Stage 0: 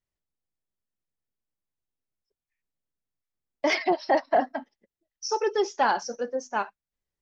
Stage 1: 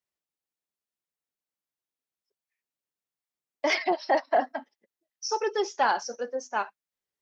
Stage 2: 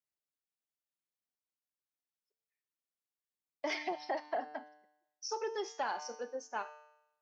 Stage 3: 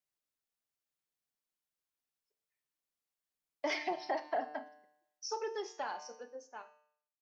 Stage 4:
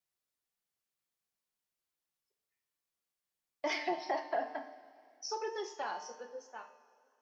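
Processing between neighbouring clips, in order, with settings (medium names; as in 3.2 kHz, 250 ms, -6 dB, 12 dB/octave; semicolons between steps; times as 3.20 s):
high-pass 400 Hz 6 dB/octave
feedback comb 150 Hz, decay 0.85 s, harmonics all, mix 70%; compression 3:1, threshold -34 dBFS, peak gain reduction 5.5 dB; trim +1 dB
fade out at the end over 2.36 s; reverberation RT60 0.30 s, pre-delay 7 ms, DRR 11.5 dB; trim +1 dB
two-slope reverb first 0.31 s, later 2.7 s, from -18 dB, DRR 6.5 dB; vibrato 2 Hz 24 cents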